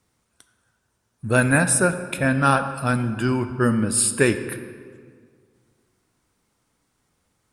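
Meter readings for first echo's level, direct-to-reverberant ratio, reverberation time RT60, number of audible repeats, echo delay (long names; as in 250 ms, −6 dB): no echo audible, 9.5 dB, 2.0 s, no echo audible, no echo audible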